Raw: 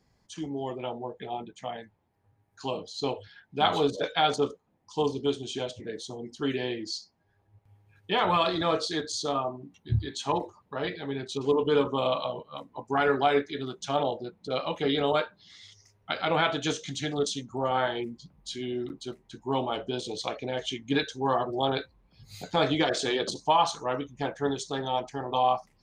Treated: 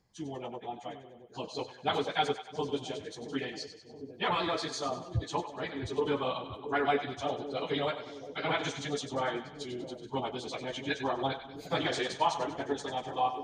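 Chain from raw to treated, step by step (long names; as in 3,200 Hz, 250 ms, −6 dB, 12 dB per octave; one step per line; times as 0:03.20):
dynamic equaliser 2,000 Hz, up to +5 dB, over −47 dBFS, Q 2.4
time stretch by phase vocoder 0.52×
on a send: echo with a time of its own for lows and highs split 600 Hz, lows 674 ms, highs 96 ms, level −10.5 dB
on the sum: level −2 dB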